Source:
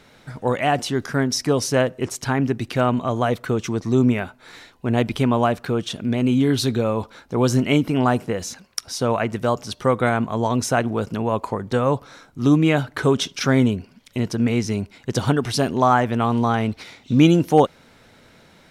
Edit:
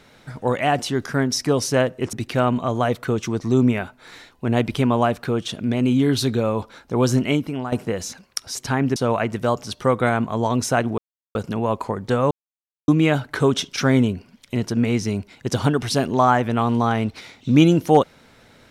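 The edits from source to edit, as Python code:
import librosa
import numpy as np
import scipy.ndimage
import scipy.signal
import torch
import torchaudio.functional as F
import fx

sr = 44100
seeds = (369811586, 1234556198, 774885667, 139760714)

y = fx.edit(x, sr, fx.move(start_s=2.13, length_s=0.41, to_s=8.96),
    fx.fade_out_to(start_s=7.56, length_s=0.57, floor_db=-13.5),
    fx.insert_silence(at_s=10.98, length_s=0.37),
    fx.silence(start_s=11.94, length_s=0.57), tone=tone)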